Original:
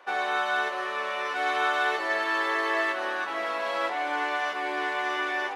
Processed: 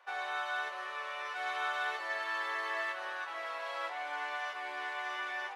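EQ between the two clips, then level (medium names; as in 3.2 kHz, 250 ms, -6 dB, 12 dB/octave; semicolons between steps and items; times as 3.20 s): high-pass 650 Hz 12 dB/octave; -8.5 dB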